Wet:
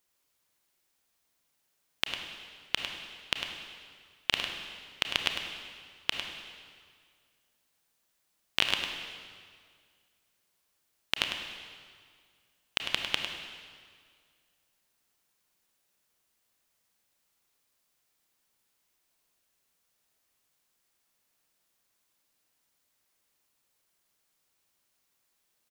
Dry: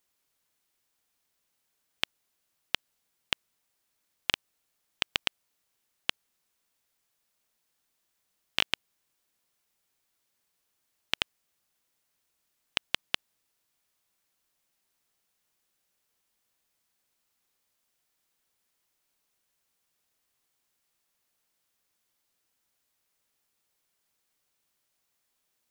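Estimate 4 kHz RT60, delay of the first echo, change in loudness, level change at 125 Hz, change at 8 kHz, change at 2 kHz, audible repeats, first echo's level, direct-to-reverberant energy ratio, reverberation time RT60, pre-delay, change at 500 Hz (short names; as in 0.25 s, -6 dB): 1.7 s, 0.102 s, 0.0 dB, +1.5 dB, +2.0 dB, +2.0 dB, 1, -8.0 dB, 2.5 dB, 2.0 s, 28 ms, +2.5 dB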